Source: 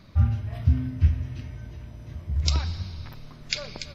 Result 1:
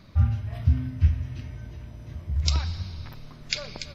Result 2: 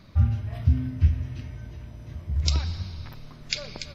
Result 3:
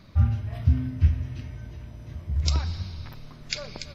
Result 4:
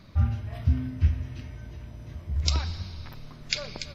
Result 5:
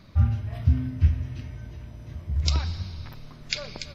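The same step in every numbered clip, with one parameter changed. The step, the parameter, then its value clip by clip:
dynamic bell, frequency: 350 Hz, 1.1 kHz, 3.2 kHz, 120 Hz, 9.7 kHz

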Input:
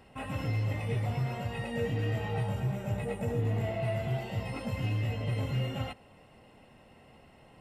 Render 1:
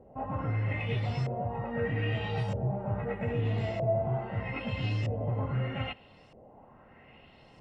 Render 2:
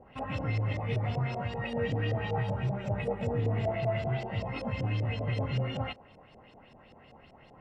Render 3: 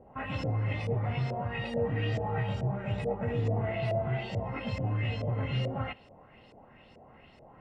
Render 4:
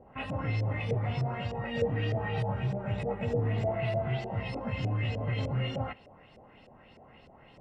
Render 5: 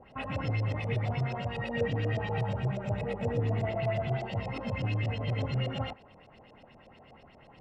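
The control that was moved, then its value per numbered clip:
LFO low-pass, rate: 0.79 Hz, 5.2 Hz, 2.3 Hz, 3.3 Hz, 8.3 Hz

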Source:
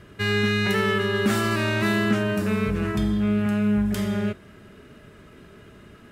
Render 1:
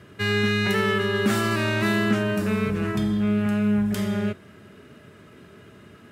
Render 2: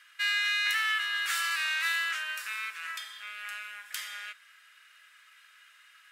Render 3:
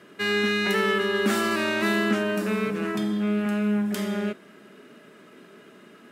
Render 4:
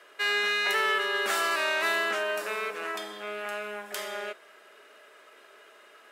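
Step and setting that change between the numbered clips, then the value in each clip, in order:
high-pass, cutoff frequency: 78 Hz, 1.5 kHz, 200 Hz, 520 Hz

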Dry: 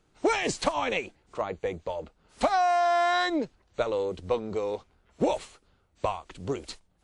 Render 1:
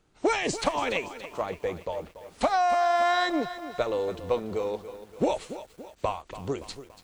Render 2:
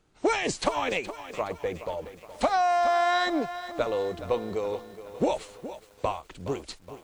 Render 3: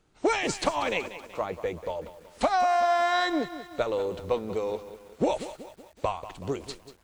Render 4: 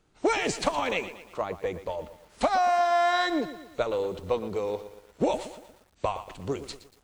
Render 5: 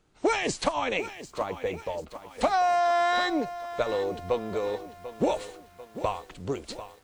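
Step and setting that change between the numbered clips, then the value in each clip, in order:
bit-crushed delay, time: 285 ms, 419 ms, 188 ms, 117 ms, 743 ms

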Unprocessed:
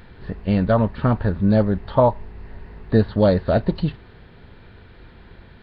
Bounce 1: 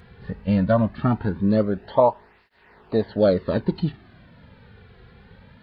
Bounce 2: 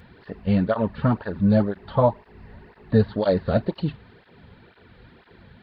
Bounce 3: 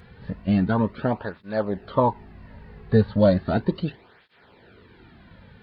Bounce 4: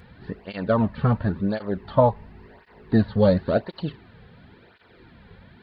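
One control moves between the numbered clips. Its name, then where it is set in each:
cancelling through-zero flanger, nulls at: 0.2 Hz, 2 Hz, 0.35 Hz, 0.94 Hz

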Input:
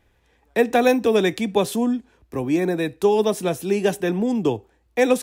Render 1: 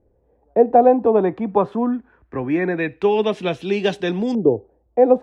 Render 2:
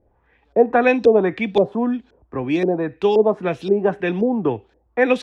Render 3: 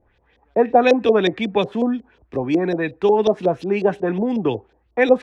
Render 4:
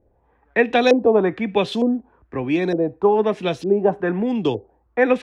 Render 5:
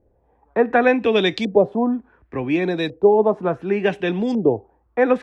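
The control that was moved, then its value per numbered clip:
LFO low-pass, rate: 0.23 Hz, 1.9 Hz, 5.5 Hz, 1.1 Hz, 0.69 Hz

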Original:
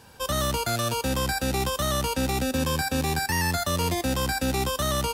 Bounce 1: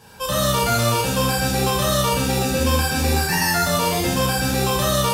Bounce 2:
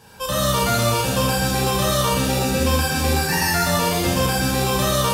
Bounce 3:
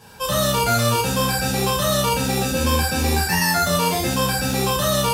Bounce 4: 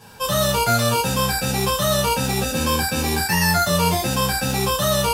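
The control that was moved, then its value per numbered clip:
gated-style reverb, gate: 310 ms, 490 ms, 160 ms, 90 ms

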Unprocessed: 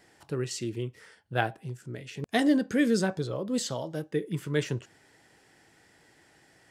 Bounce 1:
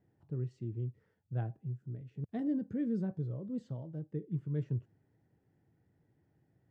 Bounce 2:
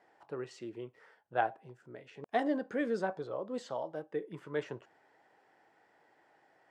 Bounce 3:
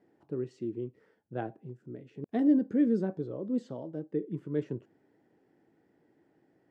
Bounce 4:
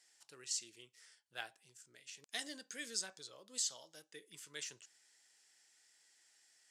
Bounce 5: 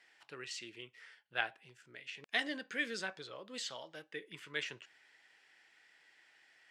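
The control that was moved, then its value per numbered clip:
band-pass filter, frequency: 110 Hz, 810 Hz, 290 Hz, 6.9 kHz, 2.5 kHz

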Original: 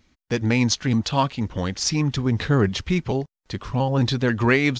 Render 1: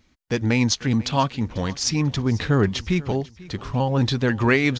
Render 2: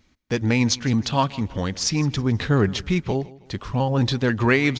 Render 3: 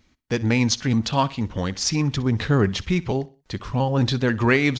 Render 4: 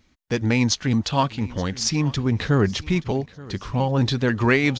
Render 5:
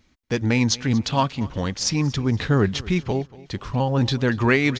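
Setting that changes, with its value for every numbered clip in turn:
feedback delay, time: 493 ms, 160 ms, 62 ms, 876 ms, 235 ms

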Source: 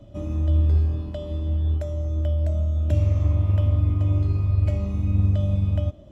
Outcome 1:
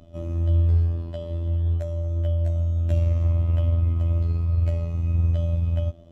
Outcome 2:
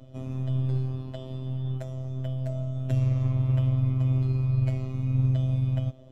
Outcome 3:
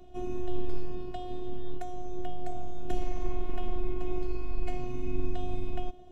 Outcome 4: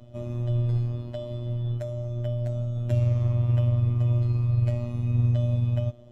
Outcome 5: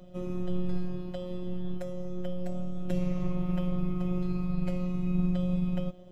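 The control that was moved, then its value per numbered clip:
robot voice, frequency: 84 Hz, 130 Hz, 360 Hz, 120 Hz, 180 Hz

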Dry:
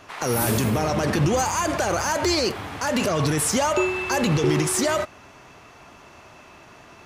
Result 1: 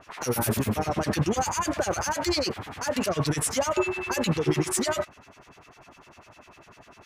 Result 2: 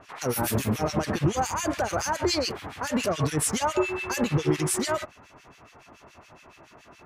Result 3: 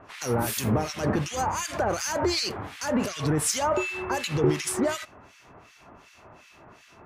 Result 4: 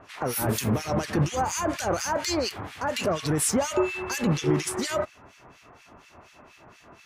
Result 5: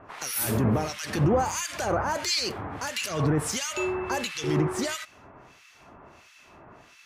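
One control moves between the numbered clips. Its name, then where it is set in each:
harmonic tremolo, rate: 10 Hz, 7.1 Hz, 2.7 Hz, 4.2 Hz, 1.5 Hz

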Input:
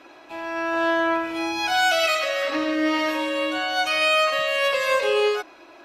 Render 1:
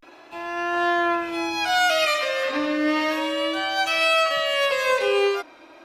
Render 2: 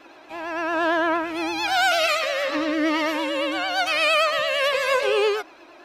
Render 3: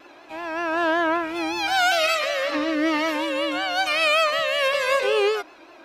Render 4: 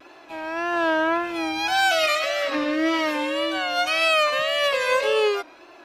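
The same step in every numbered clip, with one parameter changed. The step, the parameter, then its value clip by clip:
vibrato, rate: 0.32 Hz, 8.8 Hz, 5.3 Hz, 1.8 Hz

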